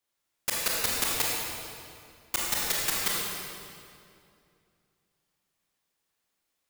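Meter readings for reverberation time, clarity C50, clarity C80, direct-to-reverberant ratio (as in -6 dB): 2.5 s, -2.5 dB, -0.5 dB, -5.0 dB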